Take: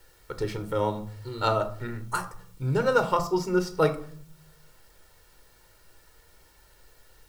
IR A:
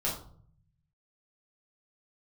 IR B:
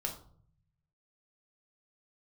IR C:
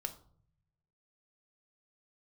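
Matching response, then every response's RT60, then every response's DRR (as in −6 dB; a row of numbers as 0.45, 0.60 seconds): C; 0.55, 0.55, 0.55 seconds; −5.5, 1.5, 7.5 decibels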